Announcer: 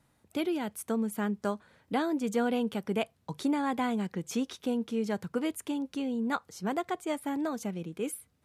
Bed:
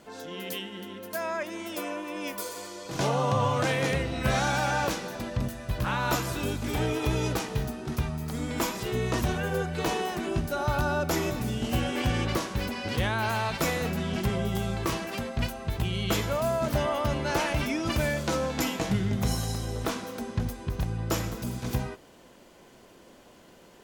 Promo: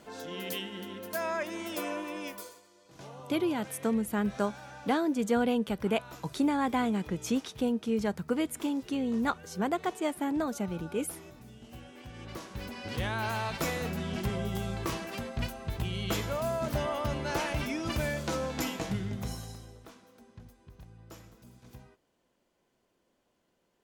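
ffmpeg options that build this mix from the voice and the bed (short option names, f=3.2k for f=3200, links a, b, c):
-filter_complex "[0:a]adelay=2950,volume=1.5dB[a];[1:a]volume=15dB,afade=t=out:st=2.02:d=0.59:silence=0.105925,afade=t=in:st=12.12:d=1.05:silence=0.158489,afade=t=out:st=18.69:d=1.13:silence=0.141254[b];[a][b]amix=inputs=2:normalize=0"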